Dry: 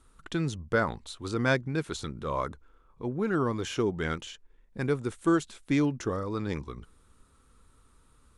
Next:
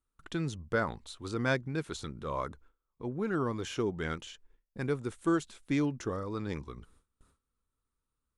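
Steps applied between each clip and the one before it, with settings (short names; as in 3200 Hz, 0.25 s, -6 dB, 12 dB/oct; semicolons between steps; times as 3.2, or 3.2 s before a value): gate with hold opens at -48 dBFS; gain -4 dB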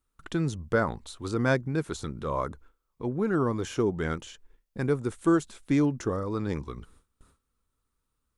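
dynamic EQ 3100 Hz, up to -7 dB, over -51 dBFS, Q 0.73; gain +6 dB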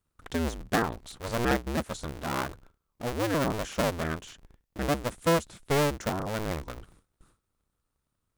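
cycle switcher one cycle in 2, inverted; gain -1.5 dB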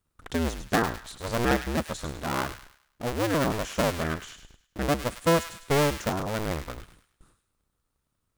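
thin delay 0.103 s, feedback 38%, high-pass 1600 Hz, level -8 dB; gain +2 dB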